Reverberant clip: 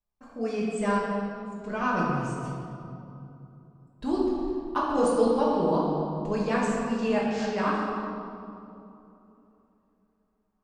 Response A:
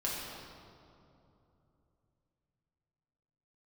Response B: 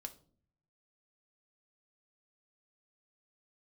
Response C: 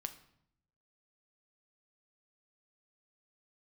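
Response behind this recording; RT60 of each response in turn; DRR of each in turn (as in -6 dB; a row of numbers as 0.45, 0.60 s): A; 2.9, 0.50, 0.70 s; -5.5, 5.5, 8.0 dB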